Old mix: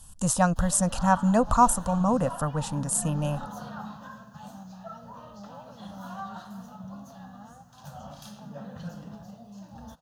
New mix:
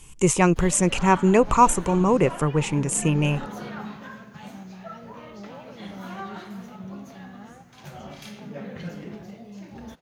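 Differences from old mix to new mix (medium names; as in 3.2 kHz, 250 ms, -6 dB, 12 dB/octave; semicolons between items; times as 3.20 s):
speech: add rippled EQ curve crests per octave 0.72, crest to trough 8 dB; master: remove static phaser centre 910 Hz, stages 4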